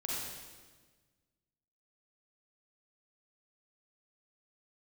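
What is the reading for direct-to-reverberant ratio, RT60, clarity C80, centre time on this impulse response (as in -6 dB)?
-5.5 dB, 1.4 s, -0.5 dB, 107 ms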